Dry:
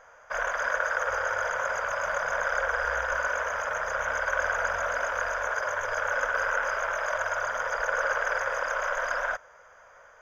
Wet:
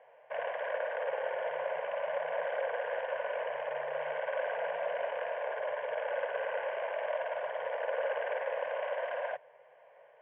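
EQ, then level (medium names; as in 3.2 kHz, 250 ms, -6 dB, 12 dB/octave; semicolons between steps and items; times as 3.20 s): Chebyshev band-pass 140–3000 Hz, order 5; static phaser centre 550 Hz, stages 4; 0.0 dB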